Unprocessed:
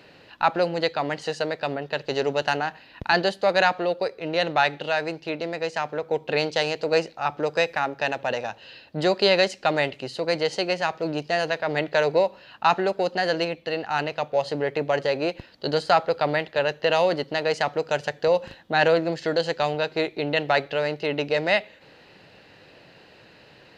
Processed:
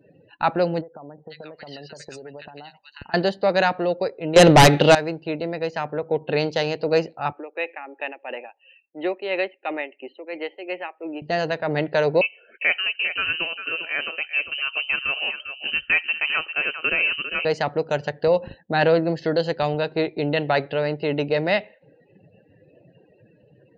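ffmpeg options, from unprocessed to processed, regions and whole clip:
-filter_complex "[0:a]asettb=1/sr,asplit=3[s0][s1][s2];[s0]atrim=end=0.814[s3];[s1]atrim=start=0.81:end=3.14,asetpts=PTS-STARTPTS,afade=t=in:d=0.004:c=qsin,afade=t=out:st=2.326:d=0.004:c=qsin,acompressor=threshold=0.0251:ratio=20:attack=3.2:release=140:knee=1:detection=peak,tiltshelf=f=1100:g=-5.5,acrossover=split=1200|4700[s4][s5][s6];[s5]adelay=490[s7];[s6]adelay=770[s8];[s4][s7][s8]amix=inputs=3:normalize=0,atrim=end_sample=102753[s9];[s2]atrim=start=3.136[s10];[s3][s9]acrossfade=d=0.004:c1=hsin:c2=qsin[s11];[s11][s10]acrossfade=d=0.004:c1=qsin:c2=hsin,asettb=1/sr,asplit=3[s12][s13][s14];[s12]atrim=end=4.364[s15];[s13]atrim=start=4.36:end=4.95,asetpts=PTS-STARTPTS,afade=t=in:d=0.004:c=qsin,afade=t=out:st=0.586:d=0.004:c=qsin,bandreject=f=7400:w=19,aeval=exprs='0.473*sin(PI/2*3.55*val(0)/0.473)':c=same[s16];[s14]atrim=start=4.946[s17];[s15][s16]acrossfade=d=0.004:c1=hsin:c2=qsin[s18];[s18][s17]acrossfade=d=0.004:c1=qsin:c2=hsin,asettb=1/sr,asplit=3[s19][s20][s21];[s19]atrim=end=7.324[s22];[s20]atrim=start=7.32:end=11.22,asetpts=PTS-STARTPTS,afade=t=in:d=0.004:c=qsin,afade=t=out:st=3.896:d=0.004:c=qsin,tremolo=f=2.9:d=0.61,highpass=f=330:w=0.5412,highpass=f=330:w=1.3066,equalizer=f=460:t=q:w=4:g=-8,equalizer=f=660:t=q:w=4:g=-7,equalizer=f=1000:t=q:w=4:g=-5,equalizer=f=1500:t=q:w=4:g=-7,equalizer=f=2400:t=q:w=4:g=4,lowpass=f=2800:w=0.5412,lowpass=f=2800:w=1.3066[s23];[s21]atrim=start=11.216[s24];[s22][s23]acrossfade=d=0.004:c1=hsin:c2=qsin[s25];[s25][s24]acrossfade=d=0.004:c1=qsin:c2=hsin,asettb=1/sr,asplit=3[s26][s27][s28];[s26]atrim=end=12.214[s29];[s27]atrim=start=12.21:end=17.45,asetpts=PTS-STARTPTS,afade=t=in:d=0.004:c=qsin,afade=t=out:st=5.236:d=0.004:c=qsin,aecho=1:1:400:0.335,atrim=end_sample=231084,lowpass=f=2700:t=q:w=0.5098,lowpass=f=2700:t=q:w=0.6013,lowpass=f=2700:t=q:w=0.9,lowpass=f=2700:t=q:w=2.563,afreqshift=-3200[s30];[s28]atrim=start=17.446[s31];[s29][s30]acrossfade=d=0.004:c1=hsin:c2=qsin[s32];[s32][s31]acrossfade=d=0.004:c1=qsin:c2=hsin,afftdn=nr=33:nf=-45,lowshelf=f=440:g=9,volume=0.794"

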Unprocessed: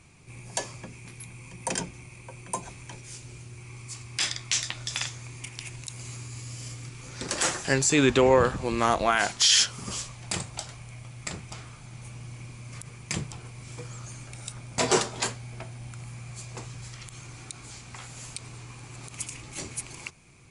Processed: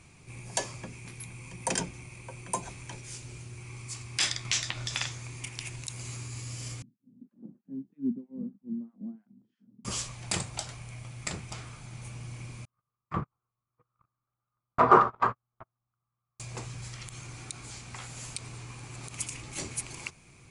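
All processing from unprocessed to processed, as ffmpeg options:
-filter_complex "[0:a]asettb=1/sr,asplit=3[s0][s1][s2];[s0]atrim=end=4.454[s3];[s1]atrim=start=4.45:end=5.12,asetpts=PTS-STARTPTS,afade=t=in:d=0.004:c=qsin,afade=t=out:st=0.666:d=0.004:c=qsin,highshelf=f=8200:g=-9.5,acompressor=mode=upward:threshold=0.0282:ratio=2.5:attack=3.2:release=140:knee=2.83:detection=peak[s4];[s2]atrim=start=5.116[s5];[s3][s4]acrossfade=d=0.004:c1=hsin:c2=qsin[s6];[s6][s5]acrossfade=d=0.004:c1=qsin:c2=hsin,asettb=1/sr,asplit=3[s7][s8][s9];[s7]atrim=end=6.824[s10];[s8]atrim=start=6.82:end=9.85,asetpts=PTS-STARTPTS,afade=t=in:d=0.004:c=qsin,afade=t=out:st=3.026:d=0.004:c=qsin,acrossover=split=1200[s11][s12];[s11]aeval=exprs='val(0)*(1-1/2+1/2*cos(2*PI*3.1*n/s))':c=same[s13];[s12]aeval=exprs='val(0)*(1-1/2-1/2*cos(2*PI*3.1*n/s))':c=same[s14];[s13][s14]amix=inputs=2:normalize=0,asuperpass=centerf=220:order=4:qfactor=3.2,aphaser=in_gain=1:out_gain=1:delay=4.7:decay=0.35:speed=1.6:type=triangular[s15];[s9]atrim=start=9.846[s16];[s10][s15]acrossfade=d=0.004:c1=hsin:c2=qsin[s17];[s17][s16]acrossfade=d=0.004:c1=qsin:c2=hsin,asettb=1/sr,asplit=3[s18][s19][s20];[s18]atrim=end=12.654[s21];[s19]atrim=start=12.65:end=16.4,asetpts=PTS-STARTPTS,afade=t=in:d=0.004:c=qsin,afade=t=out:st=3.746:d=0.004:c=qsin,lowpass=f=1200:t=q:w=7.5,agate=range=0.00447:threshold=0.0251:ratio=16:release=100:detection=peak[s22];[s20]atrim=start=16.396[s23];[s21][s22]acrossfade=d=0.004:c1=hsin:c2=qsin[s24];[s24][s23]acrossfade=d=0.004:c1=qsin:c2=hsin"

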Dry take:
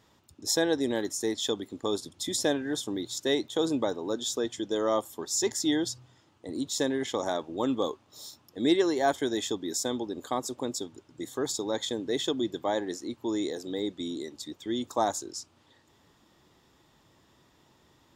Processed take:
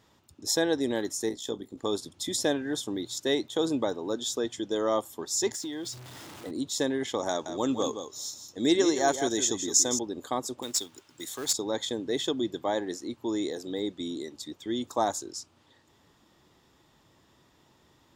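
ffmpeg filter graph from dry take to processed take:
-filter_complex "[0:a]asettb=1/sr,asplit=3[s0][s1][s2];[s0]atrim=end=1.294[s3];[s1]atrim=start=1.29:end=1.78,asetpts=PTS-STARTPTS,afade=t=in:d=0.004:c=qsin,afade=t=out:st=0.486:d=0.004:c=qsin,tremolo=f=60:d=0.667,equalizer=f=2500:t=o:w=2.4:g=-6.5,asplit=2[s4][s5];[s5]adelay=26,volume=0.2[s6];[s4][s6]amix=inputs=2:normalize=0,atrim=end_sample=21609[s7];[s2]atrim=start=1.776[s8];[s3][s7]acrossfade=d=0.004:c1=hsin:c2=qsin[s9];[s9][s8]acrossfade=d=0.004:c1=qsin:c2=hsin,asettb=1/sr,asplit=3[s10][s11][s12];[s10]atrim=end=5.544[s13];[s11]atrim=start=5.54:end=6.51,asetpts=PTS-STARTPTS,afade=t=in:d=0.004:c=qsin,afade=t=out:st=0.966:d=0.004:c=qsin,aeval=exprs='val(0)+0.5*0.0106*sgn(val(0))':c=same,lowshelf=f=73:g=-12,acompressor=threshold=0.0251:ratio=12:attack=3.2:release=140:knee=1:detection=peak[s14];[s12]atrim=start=6.506[s15];[s13][s14]acrossfade=d=0.004:c1=hsin:c2=qsin[s16];[s16][s15]acrossfade=d=0.004:c1=qsin:c2=hsin,asettb=1/sr,asplit=3[s17][s18][s19];[s17]atrim=end=7.294[s20];[s18]atrim=start=7.29:end=9.99,asetpts=PTS-STARTPTS,afade=t=in:d=0.004:c=qsin,afade=t=out:st=2.696:d=0.004:c=qsin,equalizer=f=6400:w=2.4:g=14,aecho=1:1:167:0.355,atrim=end_sample=119070[s21];[s19]atrim=start=9.986[s22];[s20][s21]acrossfade=d=0.004:c1=hsin:c2=qsin[s23];[s23][s22]acrossfade=d=0.004:c1=qsin:c2=hsin,asettb=1/sr,asplit=3[s24][s25][s26];[s24]atrim=end=10.624[s27];[s25]atrim=start=10.62:end=11.53,asetpts=PTS-STARTPTS,afade=t=in:d=0.004:c=qsin,afade=t=out:st=0.906:d=0.004:c=qsin,tiltshelf=f=710:g=-8,acrossover=split=370|3000[s28][s29][s30];[s29]acompressor=threshold=0.00282:ratio=1.5:attack=3.2:release=140:knee=2.83:detection=peak[s31];[s28][s31][s30]amix=inputs=3:normalize=0,acrusher=bits=3:mode=log:mix=0:aa=0.000001[s32];[s26]atrim=start=11.526[s33];[s27][s32]acrossfade=d=0.004:c1=hsin:c2=qsin[s34];[s34][s33]acrossfade=d=0.004:c1=qsin:c2=hsin"

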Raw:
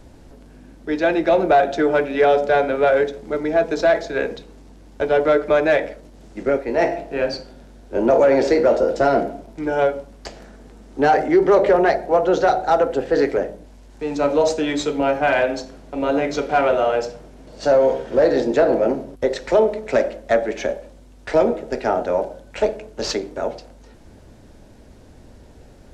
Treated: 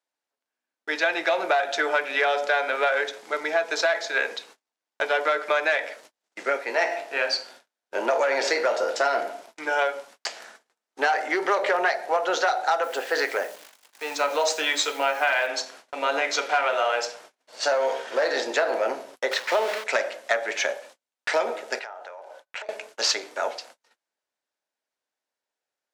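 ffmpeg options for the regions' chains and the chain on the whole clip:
-filter_complex "[0:a]asettb=1/sr,asplit=3[s0][s1][s2];[s0]atrim=end=12.834[s3];[s1]atrim=start=12.83:end=15.47,asetpts=PTS-STARTPTS,afade=t=in:d=0.004:c=qsin,afade=t=out:st=2.636:d=0.004:c=qsin,acrusher=bits=9:dc=4:mix=0:aa=0.000001,lowshelf=f=82:g=-12[s4];[s2]atrim=start=15.466[s5];[s3][s4]acrossfade=d=0.004:c1=hsin:c2=qsin[s6];[s6][s5]acrossfade=d=0.004:c1=qsin:c2=hsin,asettb=1/sr,asplit=3[s7][s8][s9];[s7]atrim=end=19.314[s10];[s8]atrim=start=19.31:end=19.84,asetpts=PTS-STARTPTS,afade=t=in:d=0.004:c=qsin,afade=t=out:st=0.526:d=0.004:c=qsin,aeval=exprs='val(0)+0.5*0.0596*sgn(val(0))':c=same,acrossover=split=5200[s11][s12];[s12]acompressor=threshold=0.00398:ratio=4:attack=1:release=60[s13];[s11][s13]amix=inputs=2:normalize=0,agate=range=0.0224:threshold=0.0794:ratio=3:release=100:detection=peak[s14];[s9]atrim=start=19.836[s15];[s10][s14]acrossfade=d=0.004:c1=hsin:c2=qsin[s16];[s16][s15]acrossfade=d=0.004:c1=qsin:c2=hsin,asettb=1/sr,asplit=3[s17][s18][s19];[s17]atrim=end=21.794[s20];[s18]atrim=start=21.79:end=22.69,asetpts=PTS-STARTPTS,afade=t=in:d=0.004:c=qsin,afade=t=out:st=0.896:d=0.004:c=qsin,highpass=470,highshelf=f=3300:g=-10,acompressor=threshold=0.02:ratio=16:attack=3.2:release=140:knee=1:detection=peak[s21];[s19]atrim=start=22.686[s22];[s20][s21]acrossfade=d=0.004:c1=hsin:c2=qsin[s23];[s23][s22]acrossfade=d=0.004:c1=qsin:c2=hsin,highpass=1100,agate=range=0.0158:threshold=0.00224:ratio=16:detection=peak,acompressor=threshold=0.0501:ratio=6,volume=2.24"

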